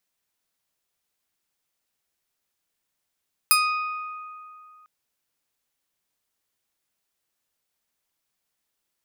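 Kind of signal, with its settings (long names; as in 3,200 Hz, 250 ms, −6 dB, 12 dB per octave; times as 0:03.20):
Karplus-Strong string D#6, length 1.35 s, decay 2.58 s, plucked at 0.34, bright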